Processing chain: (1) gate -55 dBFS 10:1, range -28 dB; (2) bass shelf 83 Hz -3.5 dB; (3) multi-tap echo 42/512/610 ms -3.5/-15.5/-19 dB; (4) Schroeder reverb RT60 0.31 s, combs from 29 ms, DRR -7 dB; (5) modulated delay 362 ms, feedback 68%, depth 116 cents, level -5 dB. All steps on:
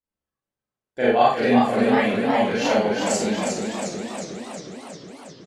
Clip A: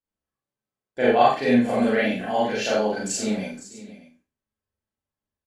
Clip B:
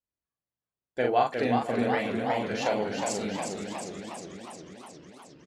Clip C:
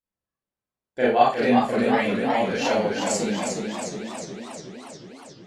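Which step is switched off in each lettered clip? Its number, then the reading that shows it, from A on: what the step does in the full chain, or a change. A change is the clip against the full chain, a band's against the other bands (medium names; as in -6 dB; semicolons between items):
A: 5, crest factor change +2.0 dB; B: 4, 125 Hz band +2.5 dB; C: 3, momentary loudness spread change +2 LU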